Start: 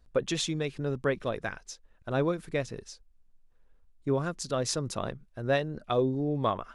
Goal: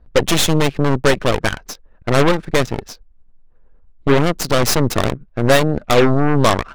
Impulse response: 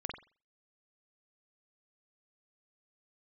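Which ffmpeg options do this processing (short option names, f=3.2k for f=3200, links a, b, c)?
-af "apsyclip=18dB,adynamicsmooth=sensitivity=5.5:basefreq=1.6k,aeval=exprs='1.06*(cos(1*acos(clip(val(0)/1.06,-1,1)))-cos(1*PI/2))+0.266*(cos(8*acos(clip(val(0)/1.06,-1,1)))-cos(8*PI/2))':c=same,volume=-5dB"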